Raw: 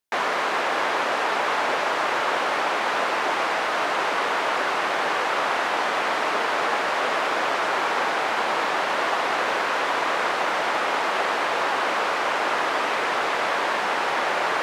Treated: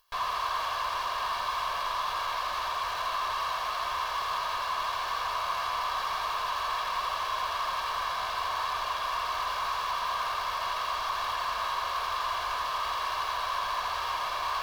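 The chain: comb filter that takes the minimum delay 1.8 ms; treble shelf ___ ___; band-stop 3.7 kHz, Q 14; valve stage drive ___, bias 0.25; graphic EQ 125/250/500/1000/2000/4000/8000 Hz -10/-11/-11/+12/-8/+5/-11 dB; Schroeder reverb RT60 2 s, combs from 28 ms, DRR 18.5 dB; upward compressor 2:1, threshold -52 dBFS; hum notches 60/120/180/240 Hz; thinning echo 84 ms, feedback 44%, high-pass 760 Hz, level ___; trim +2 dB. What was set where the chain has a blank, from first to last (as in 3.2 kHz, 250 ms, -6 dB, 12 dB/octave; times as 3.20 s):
8.7 kHz, -3.5 dB, 35 dB, -4.5 dB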